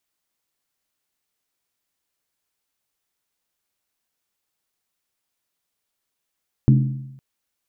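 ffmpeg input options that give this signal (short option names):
-f lavfi -i "aevalsrc='0.355*pow(10,-3*t/0.91)*sin(2*PI*134*t)+0.178*pow(10,-3*t/0.721)*sin(2*PI*213.6*t)+0.0891*pow(10,-3*t/0.623)*sin(2*PI*286.2*t)+0.0447*pow(10,-3*t/0.601)*sin(2*PI*307.7*t)+0.0224*pow(10,-3*t/0.559)*sin(2*PI*355.5*t)':d=0.51:s=44100"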